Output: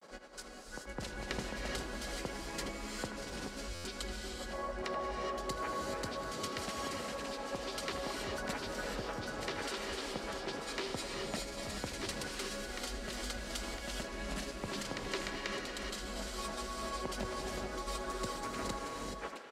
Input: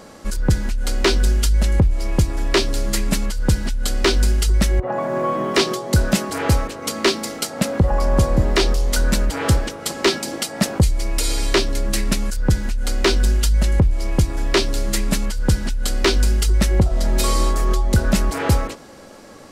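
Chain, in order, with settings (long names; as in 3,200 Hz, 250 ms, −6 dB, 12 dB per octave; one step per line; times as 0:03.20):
high-pass filter 570 Hz 6 dB per octave
high-shelf EQ 7,300 Hz −9.5 dB
downward compressor, threshold −28 dBFS, peak gain reduction 12.5 dB
granular cloud, spray 939 ms, pitch spread up and down by 0 semitones
far-end echo of a speakerphone 80 ms, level −10 dB
reverb whose tail is shaped and stops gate 450 ms rising, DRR 0.5 dB
buffer that repeats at 0:03.74, samples 512, times 8
level −8.5 dB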